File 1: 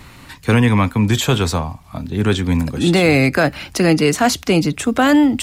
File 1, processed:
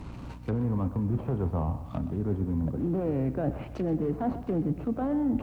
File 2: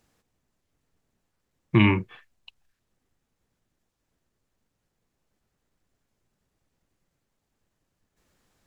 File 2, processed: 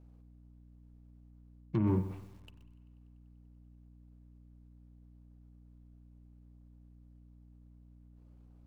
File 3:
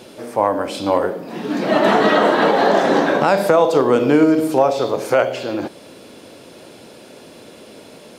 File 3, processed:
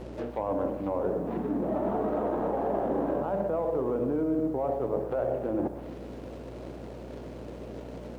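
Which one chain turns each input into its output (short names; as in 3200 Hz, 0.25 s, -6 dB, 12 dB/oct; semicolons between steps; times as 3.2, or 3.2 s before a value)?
median filter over 25 samples; limiter -10.5 dBFS; reverse; compressor 6:1, threshold -26 dBFS; reverse; treble ducked by the level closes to 960 Hz, closed at -26.5 dBFS; hum 60 Hz, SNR 14 dB; on a send: thinning echo 97 ms, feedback 82%, high-pass 540 Hz, level -24 dB; on the sum: spring tank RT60 1.5 s, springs 31 ms, chirp 55 ms, DRR 18 dB; lo-fi delay 0.126 s, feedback 35%, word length 9-bit, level -13.5 dB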